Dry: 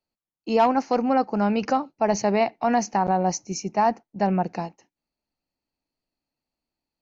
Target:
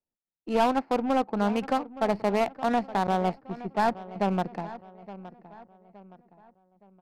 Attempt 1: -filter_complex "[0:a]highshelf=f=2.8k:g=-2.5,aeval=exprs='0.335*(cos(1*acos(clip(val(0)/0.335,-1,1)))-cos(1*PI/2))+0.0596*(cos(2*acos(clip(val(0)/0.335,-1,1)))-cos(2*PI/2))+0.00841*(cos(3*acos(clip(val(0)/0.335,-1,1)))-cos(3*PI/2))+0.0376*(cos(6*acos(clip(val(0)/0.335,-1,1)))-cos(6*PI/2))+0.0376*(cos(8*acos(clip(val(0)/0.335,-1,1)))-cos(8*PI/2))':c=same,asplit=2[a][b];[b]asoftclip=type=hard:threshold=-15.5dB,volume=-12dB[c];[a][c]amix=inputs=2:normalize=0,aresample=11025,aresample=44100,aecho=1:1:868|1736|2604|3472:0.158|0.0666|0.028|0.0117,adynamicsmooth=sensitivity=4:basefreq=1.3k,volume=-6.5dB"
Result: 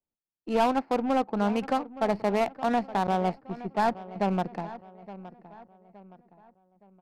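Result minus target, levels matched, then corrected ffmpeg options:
hard clip: distortion +35 dB
-filter_complex "[0:a]highshelf=f=2.8k:g=-2.5,aeval=exprs='0.335*(cos(1*acos(clip(val(0)/0.335,-1,1)))-cos(1*PI/2))+0.0596*(cos(2*acos(clip(val(0)/0.335,-1,1)))-cos(2*PI/2))+0.00841*(cos(3*acos(clip(val(0)/0.335,-1,1)))-cos(3*PI/2))+0.0376*(cos(6*acos(clip(val(0)/0.335,-1,1)))-cos(6*PI/2))+0.0376*(cos(8*acos(clip(val(0)/0.335,-1,1)))-cos(8*PI/2))':c=same,asplit=2[a][b];[b]asoftclip=type=hard:threshold=-8.5dB,volume=-12dB[c];[a][c]amix=inputs=2:normalize=0,aresample=11025,aresample=44100,aecho=1:1:868|1736|2604|3472:0.158|0.0666|0.028|0.0117,adynamicsmooth=sensitivity=4:basefreq=1.3k,volume=-6.5dB"

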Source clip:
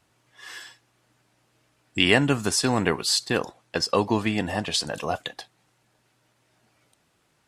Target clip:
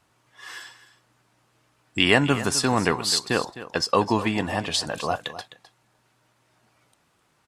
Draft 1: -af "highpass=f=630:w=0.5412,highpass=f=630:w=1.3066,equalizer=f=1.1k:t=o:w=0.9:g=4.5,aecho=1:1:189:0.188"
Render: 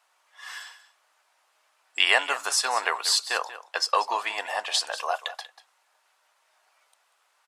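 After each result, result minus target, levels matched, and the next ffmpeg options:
500 Hz band -6.0 dB; echo 69 ms early
-af "equalizer=f=1.1k:t=o:w=0.9:g=4.5,aecho=1:1:189:0.188"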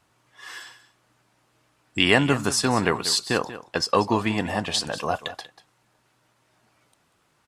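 echo 69 ms early
-af "equalizer=f=1.1k:t=o:w=0.9:g=4.5,aecho=1:1:258:0.188"

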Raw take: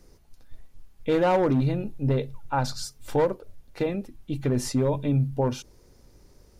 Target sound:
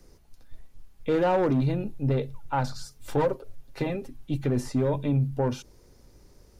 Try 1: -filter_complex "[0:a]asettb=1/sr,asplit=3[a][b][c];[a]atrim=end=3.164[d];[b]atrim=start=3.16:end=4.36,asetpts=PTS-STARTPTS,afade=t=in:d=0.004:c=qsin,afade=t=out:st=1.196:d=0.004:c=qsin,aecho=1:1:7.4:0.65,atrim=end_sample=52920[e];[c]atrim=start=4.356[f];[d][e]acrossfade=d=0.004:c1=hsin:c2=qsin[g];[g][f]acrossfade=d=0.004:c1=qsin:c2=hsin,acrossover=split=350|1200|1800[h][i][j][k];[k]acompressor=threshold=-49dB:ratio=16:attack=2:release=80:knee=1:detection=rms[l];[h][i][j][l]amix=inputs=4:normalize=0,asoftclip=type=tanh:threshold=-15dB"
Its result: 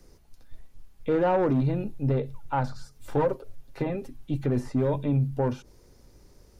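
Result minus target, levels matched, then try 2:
compressor: peak gain reduction +10 dB
-filter_complex "[0:a]asettb=1/sr,asplit=3[a][b][c];[a]atrim=end=3.164[d];[b]atrim=start=3.16:end=4.36,asetpts=PTS-STARTPTS,afade=t=in:d=0.004:c=qsin,afade=t=out:st=1.196:d=0.004:c=qsin,aecho=1:1:7.4:0.65,atrim=end_sample=52920[e];[c]atrim=start=4.356[f];[d][e]acrossfade=d=0.004:c1=hsin:c2=qsin[g];[g][f]acrossfade=d=0.004:c1=qsin:c2=hsin,acrossover=split=350|1200|1800[h][i][j][k];[k]acompressor=threshold=-38.5dB:ratio=16:attack=2:release=80:knee=1:detection=rms[l];[h][i][j][l]amix=inputs=4:normalize=0,asoftclip=type=tanh:threshold=-15dB"

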